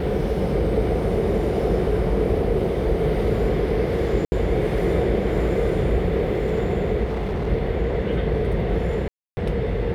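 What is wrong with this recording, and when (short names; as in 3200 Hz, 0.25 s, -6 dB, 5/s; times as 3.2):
4.25–4.32 gap 70 ms
7.03–7.49 clipped -21.5 dBFS
9.08–9.37 gap 0.29 s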